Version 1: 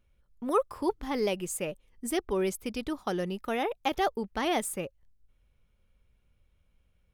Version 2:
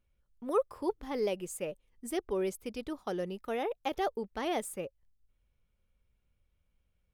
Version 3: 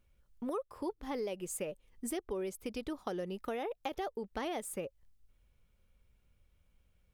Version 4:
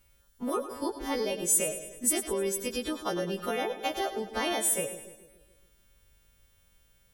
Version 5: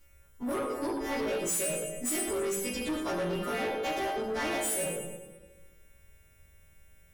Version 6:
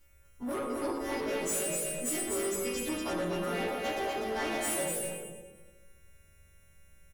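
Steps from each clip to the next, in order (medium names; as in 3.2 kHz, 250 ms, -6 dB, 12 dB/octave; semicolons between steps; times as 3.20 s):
dynamic bell 490 Hz, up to +6 dB, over -41 dBFS, Q 1.5; trim -7 dB
compression 6:1, threshold -41 dBFS, peak gain reduction 16.5 dB; trim +5.5 dB
partials quantised in pitch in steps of 2 st; two-band feedback delay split 510 Hz, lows 142 ms, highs 104 ms, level -11 dB; trim +6.5 dB
reverberation RT60 0.75 s, pre-delay 3 ms, DRR -2 dB; saturation -28 dBFS, distortion -9 dB
delay 247 ms -3.5 dB; trim -2.5 dB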